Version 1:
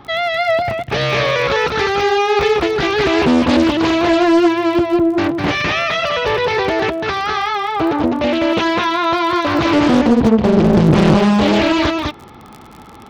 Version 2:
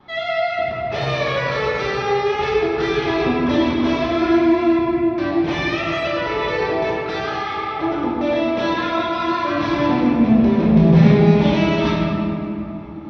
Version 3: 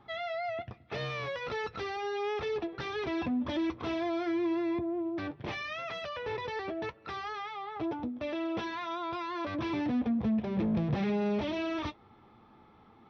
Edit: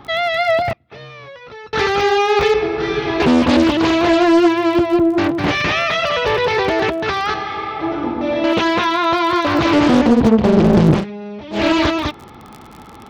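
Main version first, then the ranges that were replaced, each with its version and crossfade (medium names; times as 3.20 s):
1
0.73–1.73 s: from 3
2.54–3.20 s: from 2
7.34–8.44 s: from 2
10.98–11.58 s: from 3, crossfade 0.16 s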